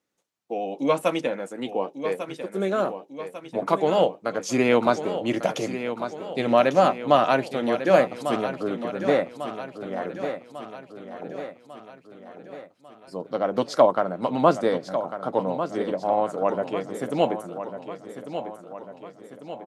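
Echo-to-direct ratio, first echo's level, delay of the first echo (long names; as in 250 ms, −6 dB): −8.5 dB, −10.0 dB, 1,147 ms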